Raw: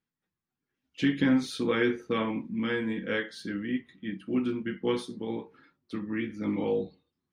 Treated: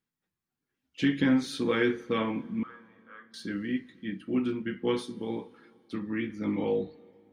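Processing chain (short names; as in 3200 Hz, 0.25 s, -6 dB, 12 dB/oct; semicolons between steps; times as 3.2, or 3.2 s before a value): 2.63–3.34 band-pass 1200 Hz, Q 12; on a send: reverb RT60 3.2 s, pre-delay 43 ms, DRR 22 dB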